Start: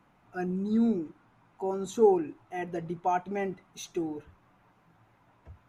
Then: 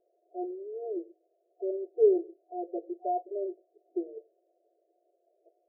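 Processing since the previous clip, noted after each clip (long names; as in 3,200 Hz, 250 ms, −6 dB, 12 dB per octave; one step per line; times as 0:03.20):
brick-wall band-pass 330–730 Hz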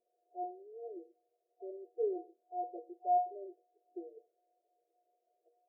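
parametric band 500 Hz −2.5 dB
tuned comb filter 240 Hz, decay 0.3 s, harmonics all, mix 90%
level +5 dB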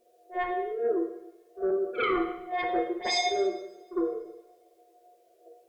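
sine wavefolder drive 16 dB, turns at −22 dBFS
echo ahead of the sound 54 ms −15 dB
coupled-rooms reverb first 0.85 s, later 2.5 s, from −27 dB, DRR 2 dB
level −3 dB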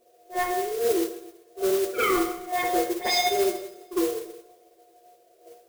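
noise that follows the level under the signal 12 dB
level +3.5 dB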